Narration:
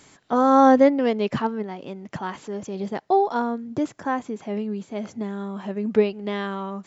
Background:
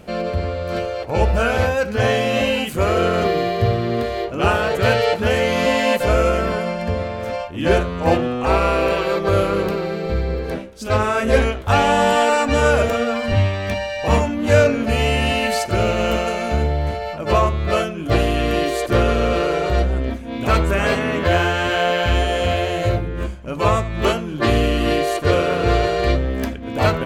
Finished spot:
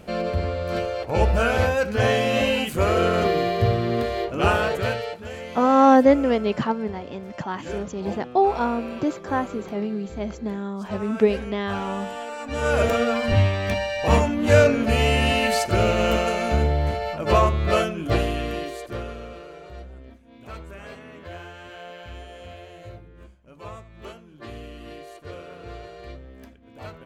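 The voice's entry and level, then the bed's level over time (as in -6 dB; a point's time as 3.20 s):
5.25 s, +0.5 dB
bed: 4.64 s -2.5 dB
5.23 s -17.5 dB
12.36 s -17.5 dB
12.85 s -1.5 dB
17.93 s -1.5 dB
19.43 s -22 dB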